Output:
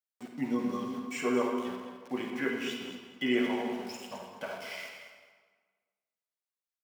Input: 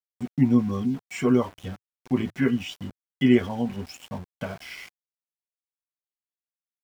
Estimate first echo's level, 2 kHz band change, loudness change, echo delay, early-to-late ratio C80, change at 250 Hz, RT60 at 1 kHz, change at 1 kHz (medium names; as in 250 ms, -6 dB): -11.5 dB, -1.0 dB, -9.0 dB, 212 ms, 4.0 dB, -9.5 dB, 1.5 s, -1.0 dB